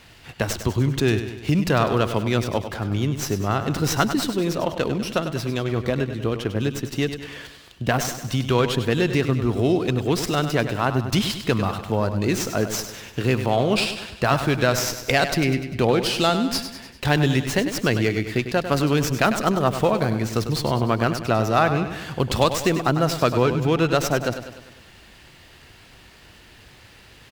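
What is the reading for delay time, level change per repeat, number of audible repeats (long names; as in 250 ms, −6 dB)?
99 ms, −5.5 dB, 5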